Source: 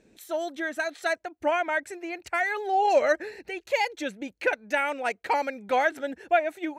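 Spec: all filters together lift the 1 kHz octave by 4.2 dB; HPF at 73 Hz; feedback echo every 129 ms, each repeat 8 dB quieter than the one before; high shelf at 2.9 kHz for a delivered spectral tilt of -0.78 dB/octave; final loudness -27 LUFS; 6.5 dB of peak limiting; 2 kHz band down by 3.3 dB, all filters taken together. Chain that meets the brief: high-pass 73 Hz; peaking EQ 1 kHz +7.5 dB; peaking EQ 2 kHz -6 dB; treble shelf 2.9 kHz -4 dB; peak limiter -16 dBFS; feedback delay 129 ms, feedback 40%, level -8 dB

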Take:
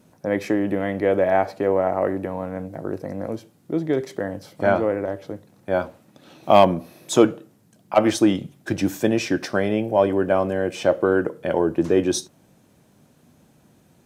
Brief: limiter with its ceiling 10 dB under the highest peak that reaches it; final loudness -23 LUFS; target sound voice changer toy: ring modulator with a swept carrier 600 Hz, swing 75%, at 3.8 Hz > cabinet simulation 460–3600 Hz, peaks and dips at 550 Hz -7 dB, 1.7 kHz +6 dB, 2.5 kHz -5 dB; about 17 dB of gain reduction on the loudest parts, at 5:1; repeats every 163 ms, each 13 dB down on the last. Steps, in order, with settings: compression 5:1, threshold -28 dBFS; peak limiter -21.5 dBFS; feedback delay 163 ms, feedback 22%, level -13 dB; ring modulator with a swept carrier 600 Hz, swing 75%, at 3.8 Hz; cabinet simulation 460–3600 Hz, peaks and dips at 550 Hz -7 dB, 1.7 kHz +6 dB, 2.5 kHz -5 dB; trim +15 dB

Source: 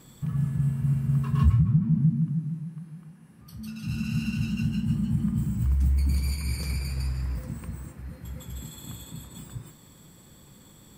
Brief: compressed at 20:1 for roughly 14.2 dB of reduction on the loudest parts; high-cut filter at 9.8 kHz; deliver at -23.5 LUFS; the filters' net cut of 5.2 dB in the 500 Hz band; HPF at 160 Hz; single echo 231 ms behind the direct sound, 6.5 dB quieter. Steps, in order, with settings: high-pass 160 Hz; low-pass 9.8 kHz; peaking EQ 500 Hz -7 dB; compression 20:1, threshold -35 dBFS; delay 231 ms -6.5 dB; trim +17 dB

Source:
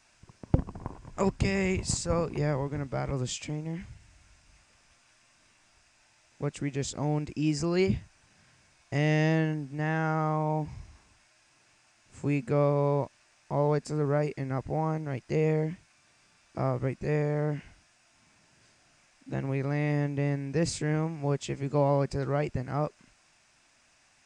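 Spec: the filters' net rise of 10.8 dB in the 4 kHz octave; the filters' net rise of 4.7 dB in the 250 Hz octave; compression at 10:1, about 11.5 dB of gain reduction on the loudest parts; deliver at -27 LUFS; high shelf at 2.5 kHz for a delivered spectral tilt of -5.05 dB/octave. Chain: peaking EQ 250 Hz +7 dB; treble shelf 2.5 kHz +8.5 dB; peaking EQ 4 kHz +6 dB; compression 10:1, threshold -27 dBFS; trim +6 dB

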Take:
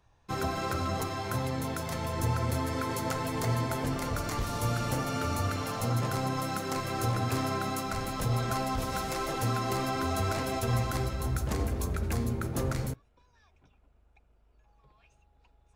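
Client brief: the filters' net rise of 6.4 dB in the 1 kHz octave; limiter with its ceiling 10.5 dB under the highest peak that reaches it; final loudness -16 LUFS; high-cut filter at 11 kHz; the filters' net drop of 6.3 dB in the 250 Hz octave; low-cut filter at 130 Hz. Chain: high-pass 130 Hz; low-pass 11 kHz; peaking EQ 250 Hz -8 dB; peaking EQ 1 kHz +8.5 dB; trim +18.5 dB; peak limiter -7.5 dBFS

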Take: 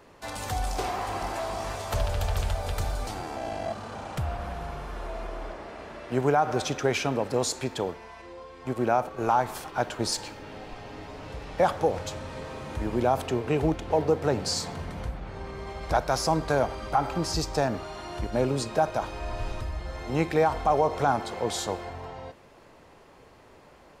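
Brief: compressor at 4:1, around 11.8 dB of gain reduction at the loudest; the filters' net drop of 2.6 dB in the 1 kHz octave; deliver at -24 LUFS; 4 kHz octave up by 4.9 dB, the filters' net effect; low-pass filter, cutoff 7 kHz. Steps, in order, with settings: low-pass 7 kHz; peaking EQ 1 kHz -4 dB; peaking EQ 4 kHz +7 dB; compression 4:1, threshold -34 dBFS; trim +14 dB

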